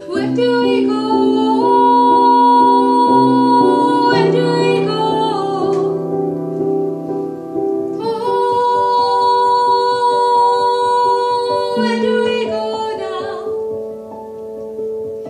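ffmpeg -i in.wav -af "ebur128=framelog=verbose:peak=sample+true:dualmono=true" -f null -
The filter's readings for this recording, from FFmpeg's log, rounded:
Integrated loudness:
  I:         -11.3 LUFS
  Threshold: -21.6 LUFS
Loudness range:
  LRA:         7.6 LU
  Threshold: -31.3 LUFS
  LRA low:   -15.8 LUFS
  LRA high:   -8.2 LUFS
Sample peak:
  Peak:       -1.4 dBFS
True peak:
  Peak:       -1.4 dBFS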